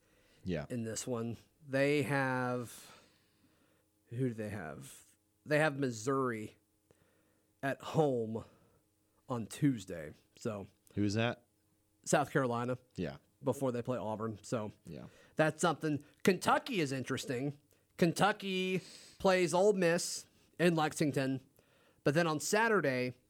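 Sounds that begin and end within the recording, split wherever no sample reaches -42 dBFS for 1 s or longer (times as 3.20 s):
4.12–6.46 s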